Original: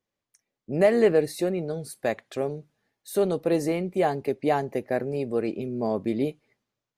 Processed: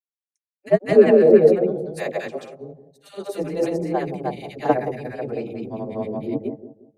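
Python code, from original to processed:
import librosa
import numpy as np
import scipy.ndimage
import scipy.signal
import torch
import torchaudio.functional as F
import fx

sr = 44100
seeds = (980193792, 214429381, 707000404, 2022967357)

y = fx.high_shelf(x, sr, hz=9200.0, db=-9.0)
y = fx.dispersion(y, sr, late='lows', ms=149.0, hz=450.0)
y = fx.granulator(y, sr, seeds[0], grain_ms=100.0, per_s=26.0, spray_ms=219.0, spread_st=0)
y = fx.echo_bbd(y, sr, ms=176, stages=1024, feedback_pct=58, wet_db=-8.0)
y = fx.band_widen(y, sr, depth_pct=100)
y = F.gain(torch.from_numpy(y), 3.5).numpy()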